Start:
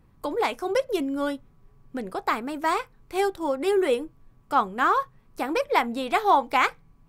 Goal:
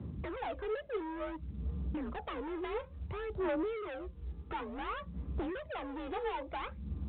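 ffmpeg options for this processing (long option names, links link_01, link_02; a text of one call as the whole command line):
ffmpeg -i in.wav -af "tiltshelf=frequency=840:gain=9.5,acompressor=threshold=-32dB:ratio=5,afreqshift=47,asoftclip=type=hard:threshold=-38dB,aphaser=in_gain=1:out_gain=1:delay=2.4:decay=0.56:speed=0.57:type=sinusoidal" -ar 8000 -c:a pcm_mulaw out.wav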